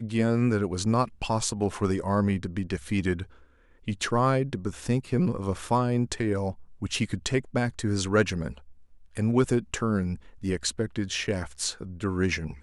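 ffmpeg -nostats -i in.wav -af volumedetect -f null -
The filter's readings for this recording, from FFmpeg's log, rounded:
mean_volume: -27.4 dB
max_volume: -10.0 dB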